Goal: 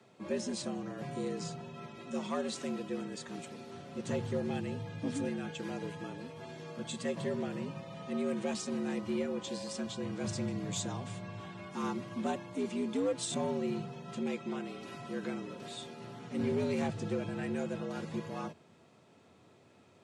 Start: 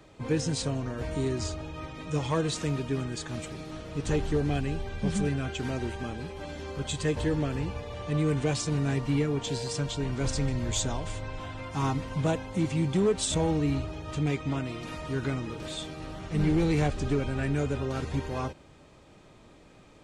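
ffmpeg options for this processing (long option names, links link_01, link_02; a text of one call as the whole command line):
ffmpeg -i in.wav -af "afreqshift=81,volume=-7.5dB" out.wav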